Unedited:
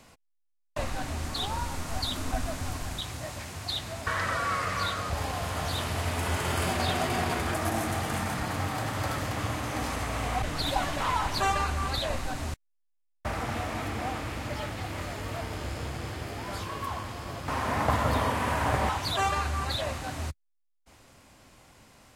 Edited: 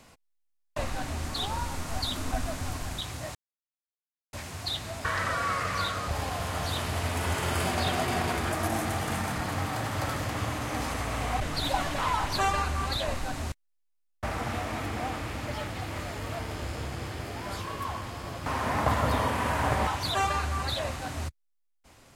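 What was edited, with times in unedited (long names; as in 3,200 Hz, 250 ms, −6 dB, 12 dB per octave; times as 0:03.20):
0:03.35: splice in silence 0.98 s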